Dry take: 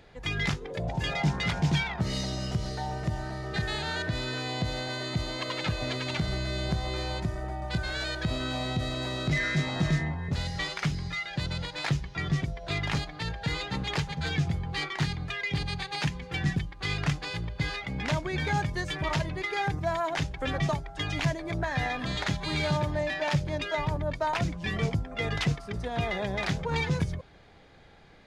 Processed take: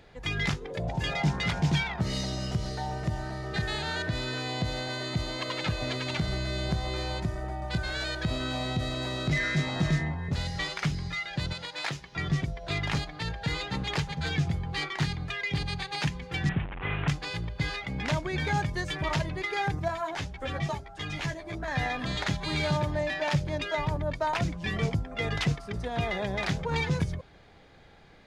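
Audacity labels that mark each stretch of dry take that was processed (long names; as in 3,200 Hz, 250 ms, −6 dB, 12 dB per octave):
11.530000	12.130000	high-pass filter 470 Hz 6 dB per octave
16.490000	17.080000	linear delta modulator 16 kbit/s, step −31.5 dBFS
19.880000	21.680000	string-ensemble chorus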